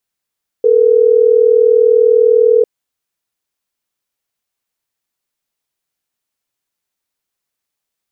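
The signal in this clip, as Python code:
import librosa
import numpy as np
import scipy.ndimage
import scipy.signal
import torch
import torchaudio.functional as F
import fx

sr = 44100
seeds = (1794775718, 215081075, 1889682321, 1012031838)

y = fx.call_progress(sr, length_s=3.12, kind='ringback tone', level_db=-9.0)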